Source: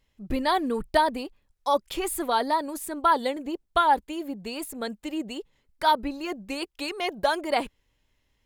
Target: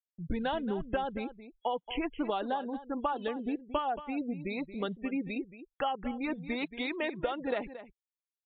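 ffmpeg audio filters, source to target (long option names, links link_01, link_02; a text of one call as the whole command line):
ffmpeg -i in.wav -filter_complex "[0:a]afftfilt=real='re*gte(hypot(re,im),0.0141)':imag='im*gte(hypot(re,im),0.0141)':win_size=1024:overlap=0.75,agate=range=-53dB:threshold=-50dB:ratio=16:detection=peak,acompressor=threshold=-28dB:ratio=20,asetrate=38170,aresample=44100,atempo=1.15535,asplit=2[link_01][link_02];[link_02]adelay=227.4,volume=-13dB,highshelf=frequency=4000:gain=-5.12[link_03];[link_01][link_03]amix=inputs=2:normalize=0" -ar 8000 -c:a libmp3lame -b:a 48k out.mp3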